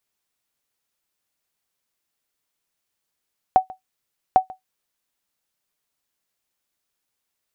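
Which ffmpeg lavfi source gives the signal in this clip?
-f lavfi -i "aevalsrc='0.596*(sin(2*PI*752*mod(t,0.8))*exp(-6.91*mod(t,0.8)/0.13)+0.075*sin(2*PI*752*max(mod(t,0.8)-0.14,0))*exp(-6.91*max(mod(t,0.8)-0.14,0)/0.13))':d=1.6:s=44100"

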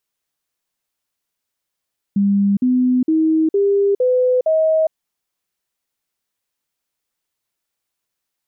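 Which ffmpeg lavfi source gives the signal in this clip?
-f lavfi -i "aevalsrc='0.251*clip(min(mod(t,0.46),0.41-mod(t,0.46))/0.005,0,1)*sin(2*PI*200*pow(2,floor(t/0.46)/3)*mod(t,0.46))':d=2.76:s=44100"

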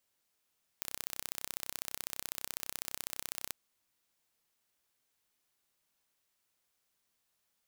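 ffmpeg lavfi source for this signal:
-f lavfi -i "aevalsrc='0.355*eq(mod(n,1378),0)*(0.5+0.5*eq(mod(n,2756),0))':d=2.69:s=44100"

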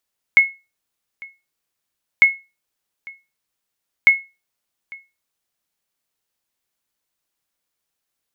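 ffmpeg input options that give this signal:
-f lavfi -i "aevalsrc='0.708*(sin(2*PI*2180*mod(t,1.85))*exp(-6.91*mod(t,1.85)/0.26)+0.0596*sin(2*PI*2180*max(mod(t,1.85)-0.85,0))*exp(-6.91*max(mod(t,1.85)-0.85,0)/0.26))':d=5.55:s=44100"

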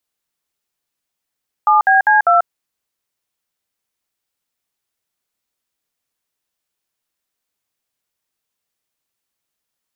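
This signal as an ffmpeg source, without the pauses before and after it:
-f lavfi -i "aevalsrc='0.282*clip(min(mod(t,0.199),0.14-mod(t,0.199))/0.002,0,1)*(eq(floor(t/0.199),0)*(sin(2*PI*852*mod(t,0.199))+sin(2*PI*1209*mod(t,0.199)))+eq(floor(t/0.199),1)*(sin(2*PI*770*mod(t,0.199))+sin(2*PI*1633*mod(t,0.199)))+eq(floor(t/0.199),2)*(sin(2*PI*852*mod(t,0.199))+sin(2*PI*1633*mod(t,0.199)))+eq(floor(t/0.199),3)*(sin(2*PI*697*mod(t,0.199))+sin(2*PI*1336*mod(t,0.199))))':d=0.796:s=44100"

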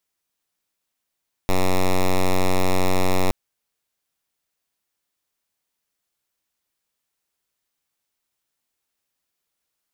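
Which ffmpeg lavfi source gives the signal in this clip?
-f lavfi -i "aevalsrc='0.15*(2*lt(mod(92.7*t,1),0.06)-1)':d=1.82:s=44100"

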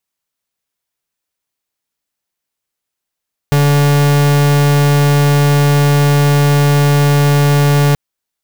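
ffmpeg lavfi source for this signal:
-f lavfi -i "aevalsrc='0.316*(2*lt(mod(144*t,1),0.44)-1)':d=4.43:s=44100"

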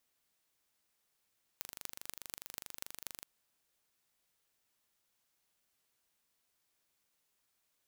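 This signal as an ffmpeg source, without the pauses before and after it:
-f lavfi -i "aevalsrc='0.251*eq(mod(n,1785),0)*(0.5+0.5*eq(mod(n,10710),0))':d=1.65:s=44100"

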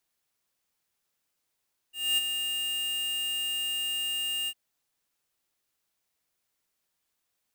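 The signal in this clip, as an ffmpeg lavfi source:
-f lavfi -i "aevalsrc='0.0631*(2*lt(mod(2820*t,1),0.5)-1)':d=2.604:s=44100,afade=t=in:d=0.245,afade=t=out:st=0.245:d=0.023:silence=0.447,afade=t=out:st=2.55:d=0.054"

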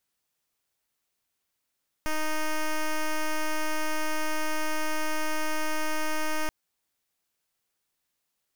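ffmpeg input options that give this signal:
-f lavfi -i "aevalsrc='0.0473*(2*lt(mod(310*t,1),0.08)-1)':d=4.43:s=44100"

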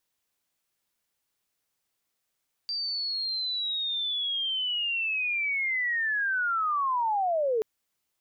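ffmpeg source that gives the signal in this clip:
-f lavfi -i "aevalsrc='pow(10,(-28.5+5.5*t/4.93)/20)*sin(2*PI*(4700*t-4280*t*t/(2*4.93)))':d=4.93:s=44100"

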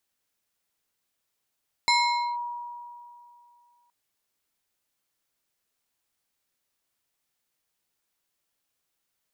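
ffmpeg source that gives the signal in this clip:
-f lavfi -i "aevalsrc='0.141*pow(10,-3*t/2.56)*sin(2*PI*959*t+1.3*clip(1-t/0.49,0,1)*sin(2*PI*3.25*959*t))':d=2.02:s=44100"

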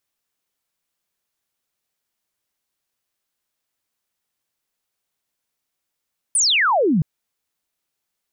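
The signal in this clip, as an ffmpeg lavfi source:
-f lavfi -i "aevalsrc='0.2*clip(t/0.002,0,1)*clip((0.67-t)/0.002,0,1)*sin(2*PI*10000*0.67/log(140/10000)*(exp(log(140/10000)*t/0.67)-1))':d=0.67:s=44100"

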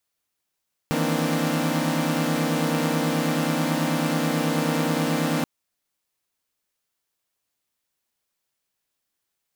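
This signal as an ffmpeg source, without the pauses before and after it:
-f lavfi -i "aevalsrc='0.0531*((2*mod(155.56*t,1)-1)+(2*mod(164.81*t,1)-1)+(2*mod(233.08*t,1)-1)+(2*mod(261.63*t,1)-1)+(2*mod(293.66*t,1)-1))':d=4.53:s=44100"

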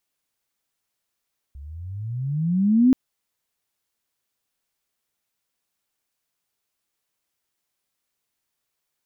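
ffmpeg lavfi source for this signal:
-f lavfi -i "aevalsrc='pow(10,(-11+25.5*(t/1.38-1))/20)*sin(2*PI*66.5*1.38/(24*log(2)/12)*(exp(24*log(2)/12*t/1.38)-1))':d=1.38:s=44100"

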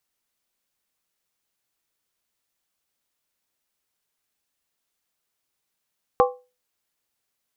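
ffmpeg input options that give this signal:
-f lavfi -i "aevalsrc='0.251*pow(10,-3*t/0.3)*sin(2*PI*499*t)+0.188*pow(10,-3*t/0.238)*sin(2*PI*795.4*t)+0.141*pow(10,-3*t/0.205)*sin(2*PI*1065.9*t)+0.106*pow(10,-3*t/0.198)*sin(2*PI*1145.7*t)':d=0.63:s=44100"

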